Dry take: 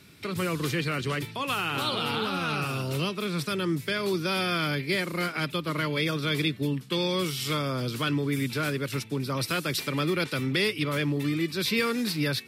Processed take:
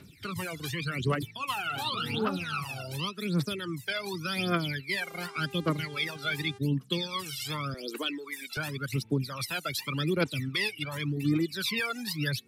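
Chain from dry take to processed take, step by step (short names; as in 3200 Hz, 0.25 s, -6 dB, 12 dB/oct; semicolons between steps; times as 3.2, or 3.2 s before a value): 7.74–8.57 HPF 300 Hz 24 dB/oct; phaser 0.88 Hz, delay 1.5 ms, feedback 69%; reverb removal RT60 1.2 s; 5–6.57 buzz 400 Hz, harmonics 28, -44 dBFS -6 dB/oct; gain -5 dB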